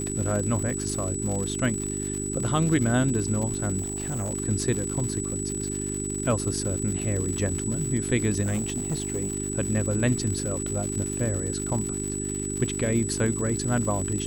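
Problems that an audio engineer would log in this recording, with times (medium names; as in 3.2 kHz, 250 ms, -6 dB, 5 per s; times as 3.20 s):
crackle 160 per s -30 dBFS
hum 50 Hz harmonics 8 -32 dBFS
whine 7.9 kHz -32 dBFS
3.79–4.31 s: clipped -25.5 dBFS
8.41–9.34 s: clipped -23 dBFS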